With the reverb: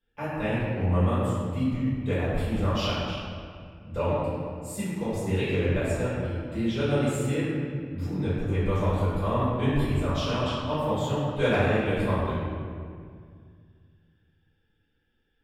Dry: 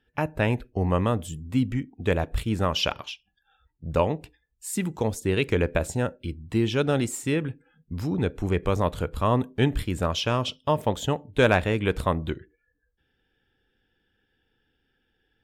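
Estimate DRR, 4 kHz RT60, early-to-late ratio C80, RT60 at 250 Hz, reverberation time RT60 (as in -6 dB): -14.0 dB, 1.4 s, -1.0 dB, 2.6 s, 2.1 s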